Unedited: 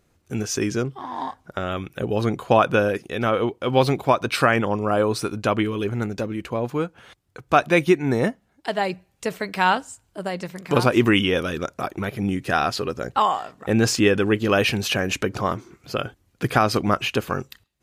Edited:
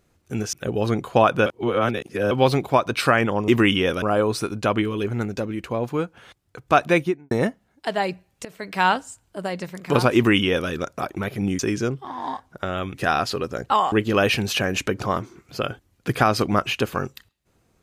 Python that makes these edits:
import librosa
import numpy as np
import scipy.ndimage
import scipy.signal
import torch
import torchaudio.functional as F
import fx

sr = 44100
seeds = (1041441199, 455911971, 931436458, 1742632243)

y = fx.studio_fade_out(x, sr, start_s=7.7, length_s=0.42)
y = fx.edit(y, sr, fx.move(start_s=0.53, length_s=1.35, to_s=12.4),
    fx.reverse_span(start_s=2.81, length_s=0.85),
    fx.fade_in_from(start_s=9.26, length_s=0.37, floor_db=-19.0),
    fx.duplicate(start_s=10.96, length_s=0.54, to_s=4.83),
    fx.cut(start_s=13.38, length_s=0.89), tone=tone)